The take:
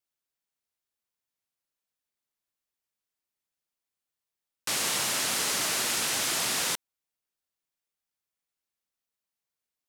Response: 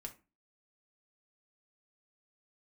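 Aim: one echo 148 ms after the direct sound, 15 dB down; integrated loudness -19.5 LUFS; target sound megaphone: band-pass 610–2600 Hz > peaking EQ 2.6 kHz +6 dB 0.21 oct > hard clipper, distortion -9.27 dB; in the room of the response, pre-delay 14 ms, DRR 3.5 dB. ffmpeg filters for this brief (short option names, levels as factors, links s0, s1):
-filter_complex "[0:a]aecho=1:1:148:0.178,asplit=2[s0][s1];[1:a]atrim=start_sample=2205,adelay=14[s2];[s1][s2]afir=irnorm=-1:irlink=0,volume=1.06[s3];[s0][s3]amix=inputs=2:normalize=0,highpass=610,lowpass=2600,equalizer=f=2600:t=o:w=0.21:g=6,asoftclip=type=hard:threshold=0.0224,volume=5.31"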